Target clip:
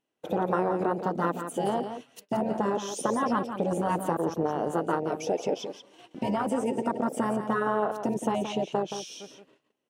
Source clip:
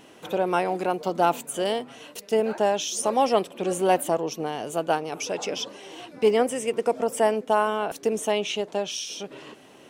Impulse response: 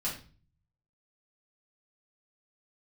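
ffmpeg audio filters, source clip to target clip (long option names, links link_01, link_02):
-af "afwtdn=0.0501,afftfilt=real='re*lt(hypot(re,im),0.398)':imag='im*lt(hypot(re,im),0.398)':win_size=1024:overlap=0.75,agate=range=-25dB:threshold=-56dB:ratio=16:detection=peak,acompressor=threshold=-33dB:ratio=3,aecho=1:1:173:0.376,volume=8dB"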